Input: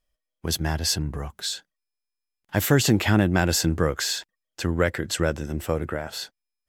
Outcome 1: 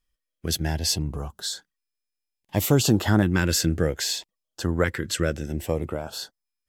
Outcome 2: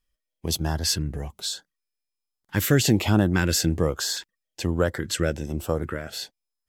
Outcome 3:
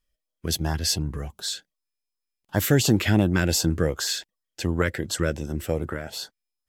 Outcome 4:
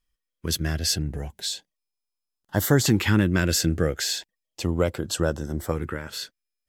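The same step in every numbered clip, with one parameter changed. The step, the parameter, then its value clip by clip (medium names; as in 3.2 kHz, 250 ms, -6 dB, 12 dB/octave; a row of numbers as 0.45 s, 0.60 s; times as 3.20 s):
LFO notch, rate: 0.62 Hz, 1.2 Hz, 2.7 Hz, 0.35 Hz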